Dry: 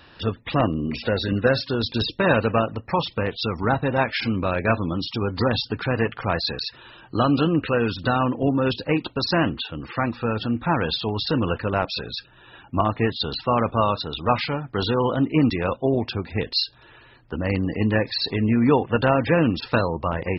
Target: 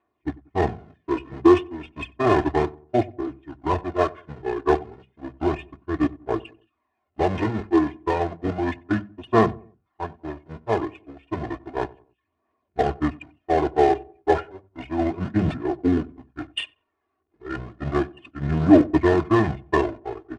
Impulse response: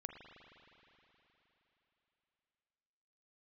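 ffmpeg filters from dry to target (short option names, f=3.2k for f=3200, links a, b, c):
-filter_complex "[0:a]aeval=exprs='val(0)+0.5*0.1*sgn(val(0))':c=same,agate=range=-47dB:threshold=-17dB:ratio=16:detection=peak,highpass=180,bandreject=f=50:t=h:w=6,bandreject=f=100:t=h:w=6,bandreject=f=150:t=h:w=6,bandreject=f=200:t=h:w=6,bandreject=f=250:t=h:w=6,bandreject=f=300:t=h:w=6,bandreject=f=350:t=h:w=6,aecho=1:1:1.9:0.7,asplit=2[a][b];[b]acrusher=bits=3:mode=log:mix=0:aa=0.000001,volume=-11dB[c];[a][c]amix=inputs=2:normalize=0,aphaser=in_gain=1:out_gain=1:delay=1.8:decay=0.39:speed=0.32:type=triangular,asetrate=29433,aresample=44100,atempo=1.49831,adynamicsmooth=sensitivity=0.5:basefreq=1.8k,asplit=2[d][e];[e]adelay=93,lowpass=f=900:p=1,volume=-20dB,asplit=2[f][g];[g]adelay=93,lowpass=f=900:p=1,volume=0.39,asplit=2[h][i];[i]adelay=93,lowpass=f=900:p=1,volume=0.39[j];[f][h][j]amix=inputs=3:normalize=0[k];[d][k]amix=inputs=2:normalize=0,aresample=22050,aresample=44100,volume=-4dB"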